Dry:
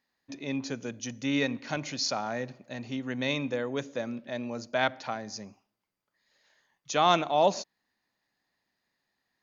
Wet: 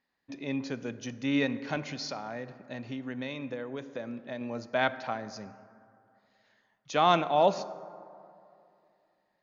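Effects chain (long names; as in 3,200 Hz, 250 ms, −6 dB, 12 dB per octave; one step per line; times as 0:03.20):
Bessel low-pass filter 3,600 Hz, order 2
0:01.82–0:04.41: downward compressor, threshold −34 dBFS, peak gain reduction 9 dB
dense smooth reverb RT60 2.6 s, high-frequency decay 0.35×, DRR 14 dB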